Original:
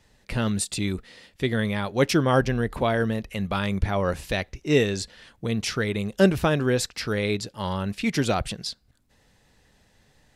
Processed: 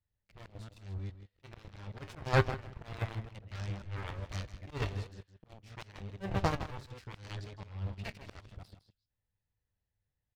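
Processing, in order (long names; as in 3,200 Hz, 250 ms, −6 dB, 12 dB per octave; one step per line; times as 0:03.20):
delay that plays each chunk backwards 137 ms, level −6 dB
high-frequency loss of the air 170 metres
harmonic generator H 3 −17 dB, 6 −42 dB, 7 −18 dB, 8 −38 dB, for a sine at −6 dBFS
low shelf with overshoot 150 Hz +9.5 dB, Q 1.5
tuned comb filter 98 Hz, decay 0.16 s, harmonics all, mix 60%
leveller curve on the samples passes 3
volume swells 238 ms
single-tap delay 159 ms −12.5 dB
expander for the loud parts 1.5 to 1, over −27 dBFS
level −6.5 dB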